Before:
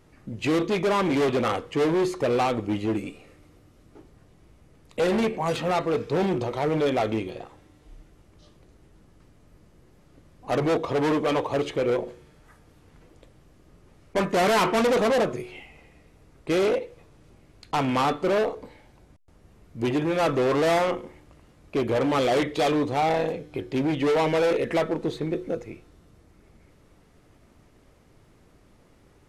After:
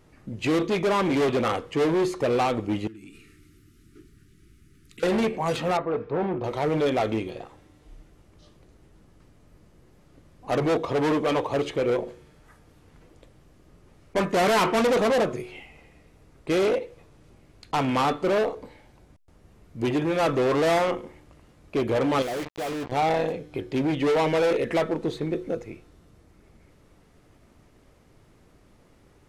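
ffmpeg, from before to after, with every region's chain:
ffmpeg -i in.wav -filter_complex "[0:a]asettb=1/sr,asplit=3[link_01][link_02][link_03];[link_01]atrim=end=2.874[link_04];[link_02]atrim=start=2.87:end=5.03,asetpts=PTS-STARTPTS,afade=type=in:duration=0.004:curve=qsin,afade=type=out:start_time=2.156:duration=0.004:curve=qsin,asuperstop=centerf=720:order=12:qfactor=0.83,highshelf=frequency=8500:gain=7.5,acompressor=threshold=-40dB:ratio=16:attack=3.2:release=140:knee=1:detection=peak[link_05];[link_03]atrim=start=5.026[link_06];[link_04][link_05]acrossfade=duration=0.004:curve1=hsin:curve2=qsin[link_07];[link_07][link_06]acrossfade=duration=0.004:curve1=qsin:curve2=hsin,asettb=1/sr,asplit=3[link_08][link_09][link_10];[link_08]atrim=end=5.774[link_11];[link_09]atrim=start=5.77:end=6.44,asetpts=PTS-STARTPTS,afade=type=in:duration=0.004:curve=qsin,afade=type=out:start_time=0.666:duration=0.004:curve=qsin,lowpass=1200,tiltshelf=frequency=740:gain=-4.5[link_12];[link_10]atrim=start=6.436[link_13];[link_11][link_12]acrossfade=duration=0.004:curve1=hsin:curve2=qsin[link_14];[link_14][link_13]acrossfade=duration=0.004:curve1=qsin:curve2=hsin,asettb=1/sr,asplit=3[link_15][link_16][link_17];[link_15]atrim=end=22.224[link_18];[link_16]atrim=start=22.22:end=22.92,asetpts=PTS-STARTPTS,afade=type=in:duration=0.004:curve=qsin,afade=type=out:start_time=0.696:duration=0.004:curve=qsin,lowpass=2800,acrusher=bits=3:mix=0:aa=0.5,volume=27.5dB,asoftclip=hard,volume=-27.5dB[link_19];[link_17]atrim=start=22.916[link_20];[link_18][link_19]acrossfade=duration=0.004:curve1=hsin:curve2=qsin[link_21];[link_21][link_20]acrossfade=duration=0.004:curve1=qsin:curve2=hsin" out.wav

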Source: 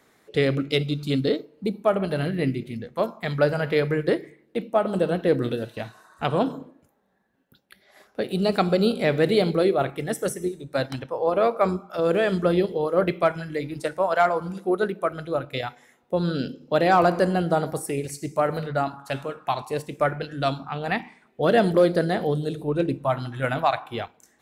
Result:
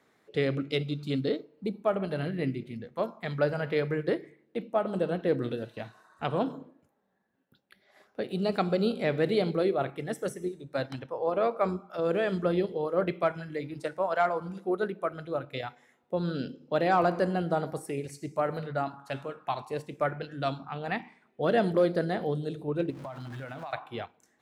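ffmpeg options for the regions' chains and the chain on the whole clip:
ffmpeg -i in.wav -filter_complex "[0:a]asettb=1/sr,asplit=3[link_01][link_02][link_03];[link_01]atrim=end=22.904[link_04];[link_02]atrim=start=22.9:end=23.73,asetpts=PTS-STARTPTS,afade=type=in:duration=0.004:curve=qsin,afade=type=out:start_time=0.826:duration=0.004:curve=qsin,aeval=exprs='val(0)+0.5*0.02*sgn(val(0))':channel_layout=same,acompressor=threshold=-29dB:ratio=16:attack=3.2:release=140:knee=1:detection=peak[link_05];[link_03]atrim=start=23.726[link_06];[link_04][link_05]acrossfade=duration=0.004:curve1=hsin:curve2=qsin[link_07];[link_07][link_06]acrossfade=duration=0.004:curve1=qsin:curve2=hsin,highpass=79,highshelf=frequency=6800:gain=-9.5,volume=-6dB" out.wav

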